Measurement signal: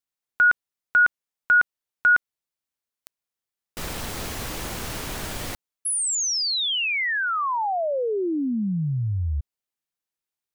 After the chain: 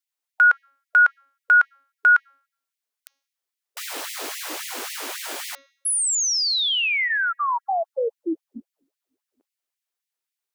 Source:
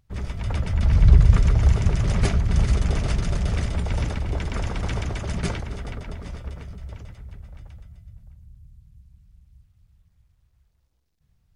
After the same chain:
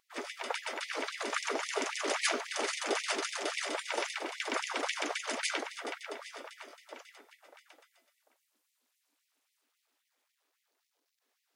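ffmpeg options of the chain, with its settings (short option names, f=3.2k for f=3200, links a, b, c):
-af "bandreject=f=275.2:t=h:w=4,bandreject=f=550.4:t=h:w=4,bandreject=f=825.6:t=h:w=4,bandreject=f=1.1008k:t=h:w=4,bandreject=f=1.376k:t=h:w=4,bandreject=f=1.6512k:t=h:w=4,bandreject=f=1.9264k:t=h:w=4,bandreject=f=2.2016k:t=h:w=4,bandreject=f=2.4768k:t=h:w=4,bandreject=f=2.752k:t=h:w=4,bandreject=f=3.0272k:t=h:w=4,bandreject=f=3.3024k:t=h:w=4,bandreject=f=3.5776k:t=h:w=4,bandreject=f=3.8528k:t=h:w=4,bandreject=f=4.128k:t=h:w=4,bandreject=f=4.4032k:t=h:w=4,bandreject=f=4.6784k:t=h:w=4,bandreject=f=4.9536k:t=h:w=4,bandreject=f=5.2288k:t=h:w=4,bandreject=f=5.504k:t=h:w=4,bandreject=f=5.7792k:t=h:w=4,bandreject=f=6.0544k:t=h:w=4,bandreject=f=6.3296k:t=h:w=4,bandreject=f=6.6048k:t=h:w=4,afftfilt=real='re*gte(b*sr/1024,240*pow(1900/240,0.5+0.5*sin(2*PI*3.7*pts/sr)))':imag='im*gte(b*sr/1024,240*pow(1900/240,0.5+0.5*sin(2*PI*3.7*pts/sr)))':win_size=1024:overlap=0.75,volume=2.5dB"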